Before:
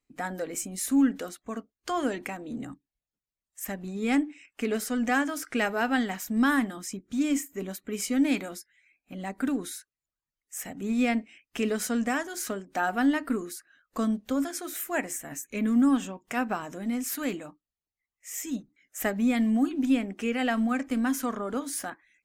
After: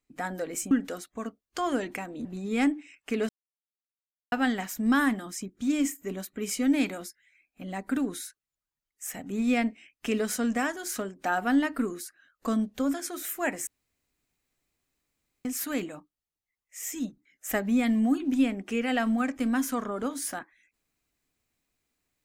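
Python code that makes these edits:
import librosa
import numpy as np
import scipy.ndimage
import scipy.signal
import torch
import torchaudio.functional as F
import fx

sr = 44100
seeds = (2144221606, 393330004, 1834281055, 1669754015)

y = fx.edit(x, sr, fx.cut(start_s=0.71, length_s=0.31),
    fx.cut(start_s=2.56, length_s=1.2),
    fx.silence(start_s=4.8, length_s=1.03),
    fx.room_tone_fill(start_s=15.18, length_s=1.78), tone=tone)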